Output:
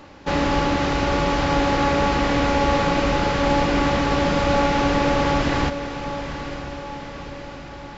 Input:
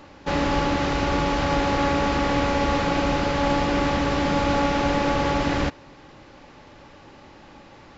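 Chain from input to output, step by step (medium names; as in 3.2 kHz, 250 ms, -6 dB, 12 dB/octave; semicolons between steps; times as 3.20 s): echo that smears into a reverb 924 ms, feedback 57%, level -10.5 dB; trim +2 dB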